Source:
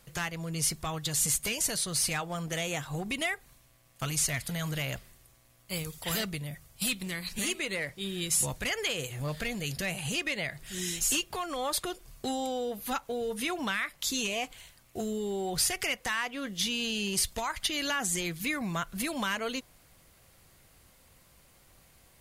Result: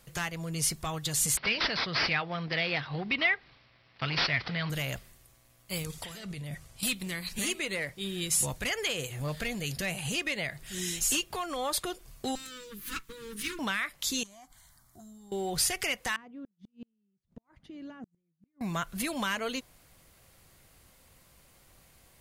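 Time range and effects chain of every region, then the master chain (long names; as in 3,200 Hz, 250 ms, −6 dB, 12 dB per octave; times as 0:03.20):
0:01.37–0:04.70: high-pass filter 69 Hz + parametric band 2,100 Hz +7 dB 0.89 octaves + bad sample-rate conversion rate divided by 4×, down none, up filtered
0:05.84–0:06.83: low-pass filter 10,000 Hz + compressor whose output falls as the input rises −40 dBFS
0:12.35–0:13.59: lower of the sound and its delayed copy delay 6.2 ms + Butterworth band-reject 680 Hz, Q 0.68
0:14.23–0:15.32: downward compressor 2 to 1, threshold −53 dBFS + phaser with its sweep stopped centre 1,100 Hz, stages 4
0:16.16–0:18.61: resonant band-pass 190 Hz, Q 1.8 + gate with flip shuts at −35 dBFS, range −40 dB
whole clip: no processing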